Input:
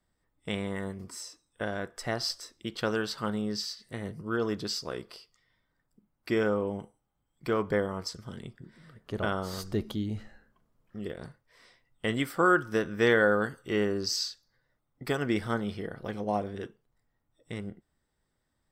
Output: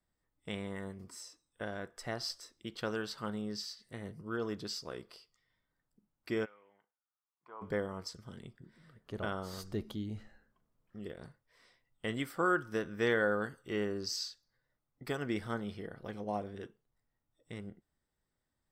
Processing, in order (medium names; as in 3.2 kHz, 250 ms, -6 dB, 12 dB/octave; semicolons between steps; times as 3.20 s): 6.44–7.61 s: band-pass filter 2.4 kHz -> 880 Hz, Q 5.8; trim -7 dB